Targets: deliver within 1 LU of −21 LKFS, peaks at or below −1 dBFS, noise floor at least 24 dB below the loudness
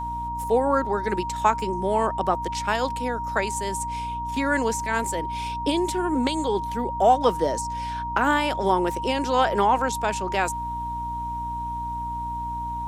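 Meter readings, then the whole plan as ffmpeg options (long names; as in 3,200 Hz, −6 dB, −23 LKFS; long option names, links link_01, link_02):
mains hum 60 Hz; hum harmonics up to 300 Hz; level of the hum −34 dBFS; interfering tone 940 Hz; level of the tone −28 dBFS; integrated loudness −24.5 LKFS; sample peak −6.0 dBFS; target loudness −21.0 LKFS
→ -af "bandreject=frequency=60:width_type=h:width=6,bandreject=frequency=120:width_type=h:width=6,bandreject=frequency=180:width_type=h:width=6,bandreject=frequency=240:width_type=h:width=6,bandreject=frequency=300:width_type=h:width=6"
-af "bandreject=frequency=940:width=30"
-af "volume=3.5dB"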